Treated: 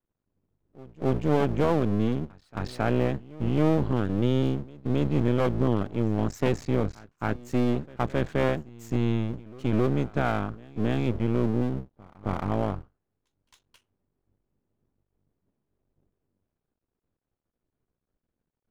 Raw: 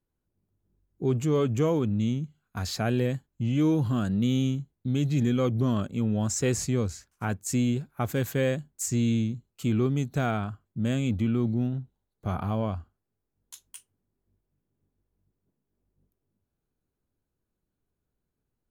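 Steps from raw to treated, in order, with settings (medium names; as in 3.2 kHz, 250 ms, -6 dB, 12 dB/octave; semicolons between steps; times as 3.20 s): octave divider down 1 oct, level -5 dB; tape spacing loss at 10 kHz 37 dB; half-wave rectifier; tilt EQ +1.5 dB/octave; reverse echo 269 ms -21.5 dB; trim +7.5 dB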